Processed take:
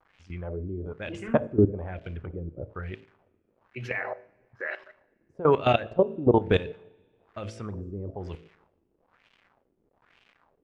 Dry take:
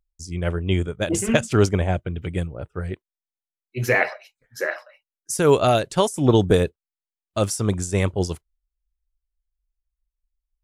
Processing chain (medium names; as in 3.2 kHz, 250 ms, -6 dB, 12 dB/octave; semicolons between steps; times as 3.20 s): de-hum 55.17 Hz, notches 12; level held to a coarse grid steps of 17 dB; crackle 340 per s -44 dBFS; LFO low-pass sine 1.1 Hz 320–2900 Hz; two-slope reverb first 0.56 s, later 1.9 s, from -18 dB, DRR 16.5 dB; trim -2 dB